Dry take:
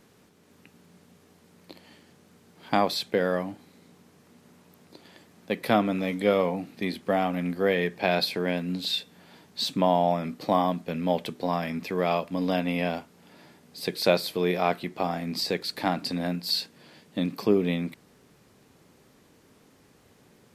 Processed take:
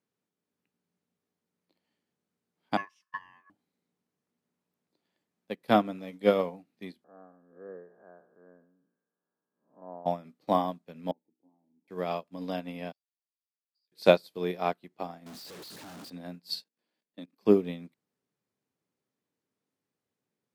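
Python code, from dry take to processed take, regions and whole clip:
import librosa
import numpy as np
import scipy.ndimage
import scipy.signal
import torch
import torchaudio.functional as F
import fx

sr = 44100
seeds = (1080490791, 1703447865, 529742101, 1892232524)

y = fx.chain(x, sr, fx.curve_eq(hz=(110.0, 210.0, 320.0, 510.0, 910.0, 1400.0, 2100.0, 3600.0, 7900.0, 11000.0), db=(0, -17, 13, -13, -9, -1, -20, -7, -6, -14)),
    fx.ring_mod(carrier_hz=1400.0), at=(2.77, 3.5))
y = fx.chain(y, sr, fx.spec_blur(span_ms=229.0),
    fx.cheby_ripple(hz=1700.0, ripple_db=6),
    fx.low_shelf(hz=240.0, db=-7.5), at=(7.04, 10.06))
y = fx.chain(y, sr, fx.cvsd(bps=16000),
    fx.formant_cascade(vowel='u'),
    fx.low_shelf(hz=190.0, db=-5.5), at=(11.11, 11.88))
y = fx.chain(y, sr, fx.level_steps(step_db=16),
    fx.bandpass_q(hz=4800.0, q=15.0), at=(12.92, 13.92))
y = fx.chain(y, sr, fx.clip_1bit(),
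    fx.doppler_dist(depth_ms=0.2), at=(15.26, 16.1))
y = fx.chain(y, sr, fx.highpass(hz=200.0, slope=24),
    fx.level_steps(step_db=14), at=(16.62, 17.41))
y = scipy.signal.sosfilt(scipy.signal.butter(2, 110.0, 'highpass', fs=sr, output='sos'), y)
y = fx.dynamic_eq(y, sr, hz=2200.0, q=1.8, threshold_db=-45.0, ratio=4.0, max_db=-4)
y = fx.upward_expand(y, sr, threshold_db=-39.0, expansion=2.5)
y = y * 10.0 ** (4.0 / 20.0)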